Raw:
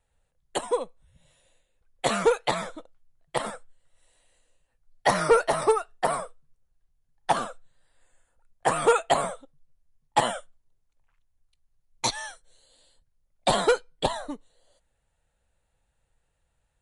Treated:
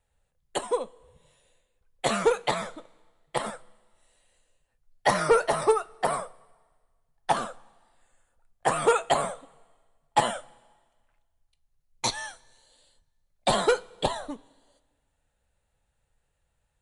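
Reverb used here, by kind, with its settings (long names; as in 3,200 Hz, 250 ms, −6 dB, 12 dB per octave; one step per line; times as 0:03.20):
coupled-rooms reverb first 0.21 s, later 1.5 s, from −18 dB, DRR 12.5 dB
level −1 dB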